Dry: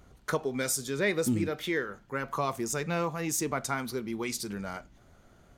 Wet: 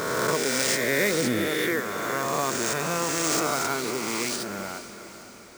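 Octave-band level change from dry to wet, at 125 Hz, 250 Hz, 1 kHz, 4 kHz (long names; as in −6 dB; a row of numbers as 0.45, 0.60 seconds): +0.5, +3.0, +6.5, +10.5 decibels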